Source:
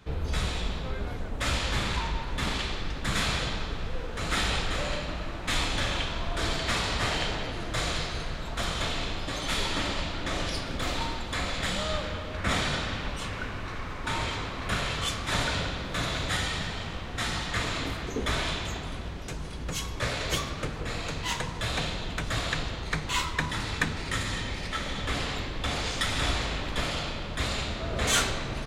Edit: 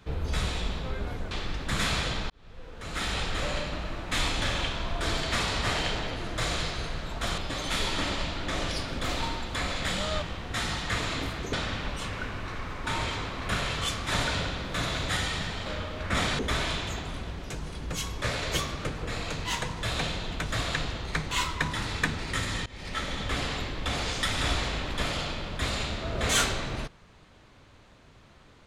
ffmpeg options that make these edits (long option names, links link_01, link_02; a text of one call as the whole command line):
ffmpeg -i in.wav -filter_complex "[0:a]asplit=9[link_01][link_02][link_03][link_04][link_05][link_06][link_07][link_08][link_09];[link_01]atrim=end=1.312[link_10];[link_02]atrim=start=2.668:end=3.66,asetpts=PTS-STARTPTS,afade=type=out:start_time=0.988:duration=0.004:curve=hsin[link_11];[link_03]atrim=start=3.66:end=8.742,asetpts=PTS-STARTPTS,afade=type=in:duration=1.15[link_12];[link_04]atrim=start=9.158:end=12.002[link_13];[link_05]atrim=start=16.858:end=18.172[link_14];[link_06]atrim=start=12.728:end=16.862[link_15];[link_07]atrim=start=11.998:end=12.732[link_16];[link_08]atrim=start=18.168:end=24.44,asetpts=PTS-STARTPTS,afade=type=out:start_time=6.268:duration=0.004:curve=hsin:silence=0.0707946[link_17];[link_09]atrim=start=24.44,asetpts=PTS-STARTPTS,afade=type=in:duration=0.31:silence=0.0707946[link_18];[link_11][link_12]concat=n=2:v=0:a=1[link_19];[link_10][link_19]acrossfade=duration=0.004:curve1=hsin:curve2=hsin[link_20];[link_20][link_13]acrossfade=duration=0.004:curve1=hsin:curve2=hsin[link_21];[link_21][link_14]acrossfade=duration=0.004:curve1=hsin:curve2=hsin[link_22];[link_22][link_15]acrossfade=duration=0.004:curve1=hsin:curve2=hsin[link_23];[link_23][link_16]acrossfade=duration=0.004:curve1=hsin:curve2=hsin[link_24];[link_17][link_18]concat=n=2:v=0:a=1[link_25];[link_24][link_25]acrossfade=duration=0.004:curve1=hsin:curve2=hsin" out.wav